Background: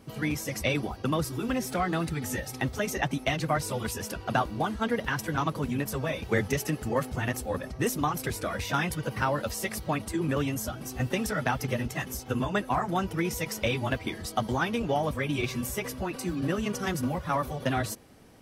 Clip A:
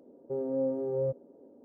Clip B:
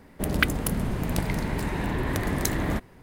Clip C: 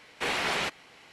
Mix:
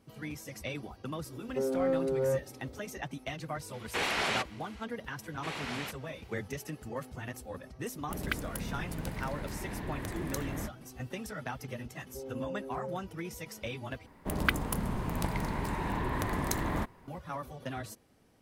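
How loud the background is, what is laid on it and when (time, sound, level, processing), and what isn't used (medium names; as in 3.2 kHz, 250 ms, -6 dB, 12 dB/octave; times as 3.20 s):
background -11 dB
1.26 s: add A -1 dB + waveshaping leveller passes 1
3.73 s: add C -2 dB
5.22 s: add C -10.5 dB
7.89 s: add B -11.5 dB
11.85 s: add A -10 dB
14.06 s: replace with B -6.5 dB + peaking EQ 1 kHz +8 dB 0.61 oct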